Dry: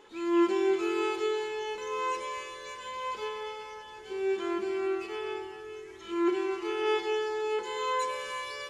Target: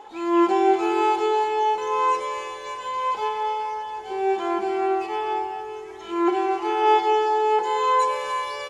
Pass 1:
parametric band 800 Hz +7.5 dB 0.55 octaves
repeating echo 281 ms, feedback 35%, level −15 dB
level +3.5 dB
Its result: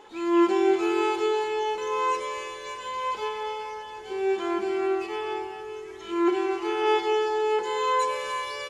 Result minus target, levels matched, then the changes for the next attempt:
1,000 Hz band −3.5 dB
change: parametric band 800 Hz +19 dB 0.55 octaves

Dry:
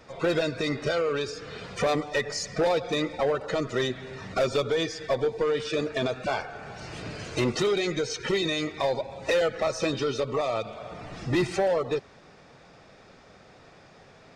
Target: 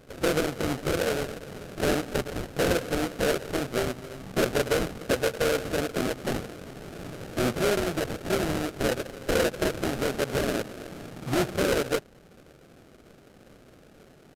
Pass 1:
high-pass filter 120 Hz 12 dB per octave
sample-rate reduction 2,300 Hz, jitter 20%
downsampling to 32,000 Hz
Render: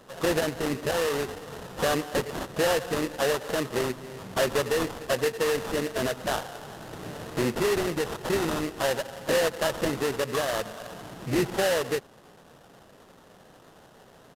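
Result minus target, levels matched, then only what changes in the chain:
sample-rate reduction: distortion −19 dB
change: sample-rate reduction 1,000 Hz, jitter 20%

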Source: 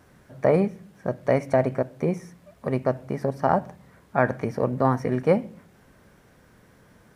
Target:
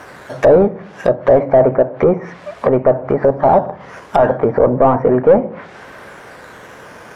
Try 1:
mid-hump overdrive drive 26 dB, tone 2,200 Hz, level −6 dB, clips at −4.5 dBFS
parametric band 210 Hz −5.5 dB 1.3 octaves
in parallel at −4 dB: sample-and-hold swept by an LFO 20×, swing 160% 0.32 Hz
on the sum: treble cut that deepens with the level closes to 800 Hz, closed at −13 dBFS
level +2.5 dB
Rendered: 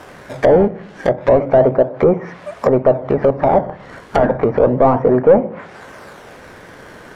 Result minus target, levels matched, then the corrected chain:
sample-and-hold swept by an LFO: distortion +12 dB
mid-hump overdrive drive 26 dB, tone 2,200 Hz, level −6 dB, clips at −4.5 dBFS
parametric band 210 Hz −5.5 dB 1.3 octaves
in parallel at −4 dB: sample-and-hold swept by an LFO 6×, swing 160% 0.32 Hz
on the sum: treble cut that deepens with the level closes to 800 Hz, closed at −13 dBFS
level +2.5 dB

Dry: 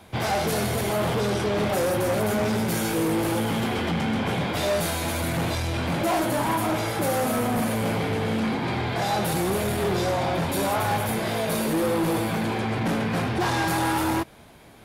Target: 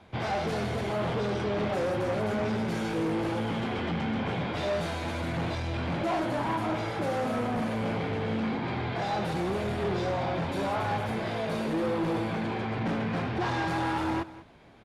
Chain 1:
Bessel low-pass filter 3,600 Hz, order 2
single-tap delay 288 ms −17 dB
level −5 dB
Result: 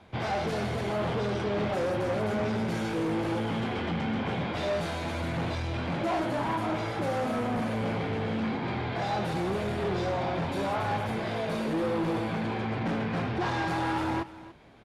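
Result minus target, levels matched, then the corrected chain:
echo 94 ms late
Bessel low-pass filter 3,600 Hz, order 2
single-tap delay 194 ms −17 dB
level −5 dB

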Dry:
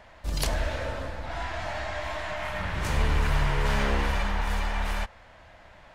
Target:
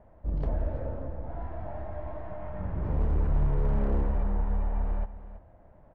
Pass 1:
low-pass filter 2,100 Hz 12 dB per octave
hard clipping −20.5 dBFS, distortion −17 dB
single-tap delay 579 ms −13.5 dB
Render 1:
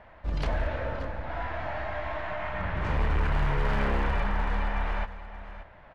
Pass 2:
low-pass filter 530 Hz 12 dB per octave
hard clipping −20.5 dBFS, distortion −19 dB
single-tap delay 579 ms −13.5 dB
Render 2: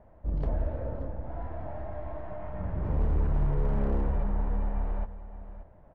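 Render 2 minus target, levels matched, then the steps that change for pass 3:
echo 249 ms late
change: single-tap delay 330 ms −13.5 dB

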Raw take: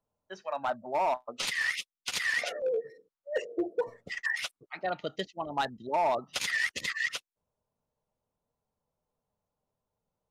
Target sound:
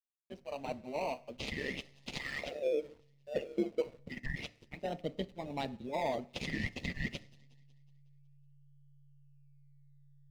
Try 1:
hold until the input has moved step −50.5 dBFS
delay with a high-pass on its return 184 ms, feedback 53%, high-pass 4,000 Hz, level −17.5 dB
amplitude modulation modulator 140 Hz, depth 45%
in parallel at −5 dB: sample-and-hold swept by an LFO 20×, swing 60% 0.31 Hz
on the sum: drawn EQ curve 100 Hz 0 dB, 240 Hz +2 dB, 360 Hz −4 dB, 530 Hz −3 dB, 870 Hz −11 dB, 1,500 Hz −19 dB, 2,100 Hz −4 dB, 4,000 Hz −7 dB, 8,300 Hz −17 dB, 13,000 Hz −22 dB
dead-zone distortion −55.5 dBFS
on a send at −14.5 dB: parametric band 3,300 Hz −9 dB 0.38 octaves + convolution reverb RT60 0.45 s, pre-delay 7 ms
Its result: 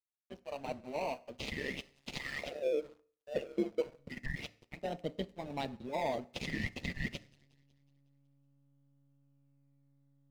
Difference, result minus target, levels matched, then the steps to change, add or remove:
dead-zone distortion: distortion +9 dB
change: dead-zone distortion −65 dBFS

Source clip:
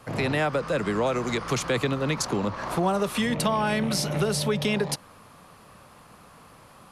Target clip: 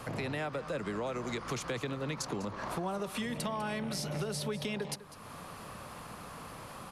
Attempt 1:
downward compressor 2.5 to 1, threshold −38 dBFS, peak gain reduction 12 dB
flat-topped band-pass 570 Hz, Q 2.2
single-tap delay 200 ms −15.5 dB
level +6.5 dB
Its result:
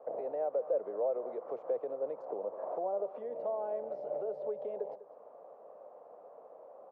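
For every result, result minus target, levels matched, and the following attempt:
downward compressor: peak gain reduction −7 dB; 500 Hz band +4.0 dB
downward compressor 2.5 to 1, threshold −49.5 dBFS, peak gain reduction 19 dB
flat-topped band-pass 570 Hz, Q 2.2
single-tap delay 200 ms −15.5 dB
level +6.5 dB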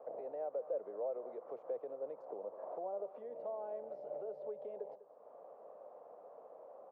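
500 Hz band +4.0 dB
downward compressor 2.5 to 1, threshold −49.5 dBFS, peak gain reduction 19 dB
single-tap delay 200 ms −15.5 dB
level +6.5 dB

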